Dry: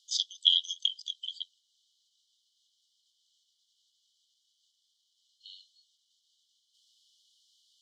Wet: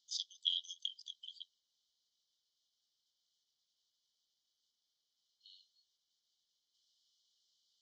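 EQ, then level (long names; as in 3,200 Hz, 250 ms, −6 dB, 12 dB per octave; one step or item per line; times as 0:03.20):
low-pass filter 6,400 Hz 24 dB per octave
parametric band 3,000 Hz −11 dB 1.2 octaves
high-shelf EQ 4,300 Hz −9 dB
+1.5 dB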